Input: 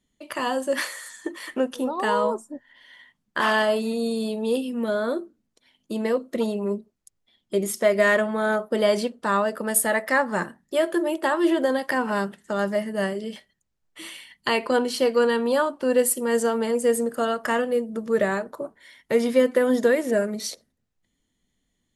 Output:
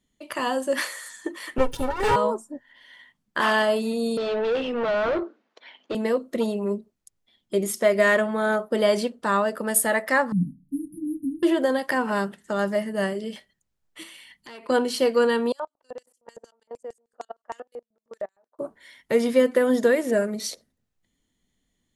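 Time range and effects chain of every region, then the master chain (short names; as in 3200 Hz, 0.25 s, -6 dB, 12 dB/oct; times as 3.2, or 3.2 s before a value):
1.58–2.16 minimum comb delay 7.2 ms + low shelf 190 Hz +9.5 dB + comb 2.2 ms, depth 72%
4.17–5.95 HPF 440 Hz + overdrive pedal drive 28 dB, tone 1800 Hz, clips at -16.5 dBFS + air absorption 170 m
10.32–11.43 brick-wall FIR band-stop 300–8900 Hz + tilt shelf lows +8.5 dB, about 1400 Hz + comb 6.5 ms, depth 67%
14.03–14.69 compressor 2.5:1, threshold -44 dBFS + core saturation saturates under 2400 Hz
15.52–18.59 level quantiser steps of 23 dB + LFO band-pass square 6.5 Hz 760–6100 Hz + upward expander, over -51 dBFS
whole clip: dry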